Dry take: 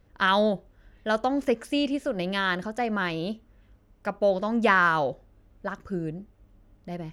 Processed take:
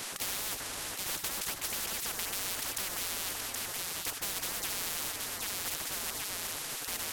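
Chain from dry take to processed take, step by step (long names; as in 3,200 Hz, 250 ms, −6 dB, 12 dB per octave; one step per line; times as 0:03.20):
variable-slope delta modulation 64 kbit/s
on a send: delay that swaps between a low-pass and a high-pass 387 ms, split 1,000 Hz, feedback 58%, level −10.5 dB
on the sum: gate on every frequency bin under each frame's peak −20 dB weak
downward compressor, threshold −40 dBFS, peak gain reduction 8.5 dB
every bin compressed towards the loudest bin 10 to 1
level +8.5 dB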